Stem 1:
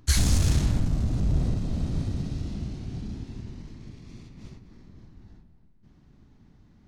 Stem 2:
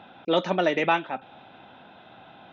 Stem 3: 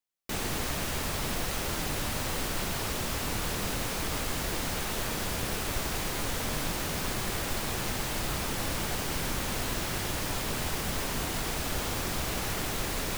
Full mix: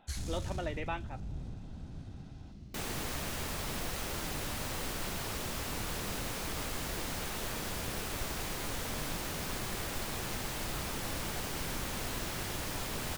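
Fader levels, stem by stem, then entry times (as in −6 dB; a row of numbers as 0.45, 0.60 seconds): −17.0, −15.5, −5.5 decibels; 0.00, 0.00, 2.45 seconds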